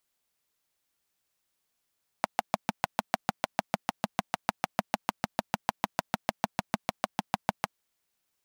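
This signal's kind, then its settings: single-cylinder engine model, steady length 5.52 s, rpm 800, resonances 210/740 Hz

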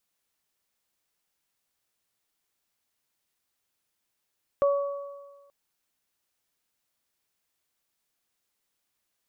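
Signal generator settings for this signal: additive tone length 0.88 s, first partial 564 Hz, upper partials -9.5 dB, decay 1.37 s, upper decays 1.44 s, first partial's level -18 dB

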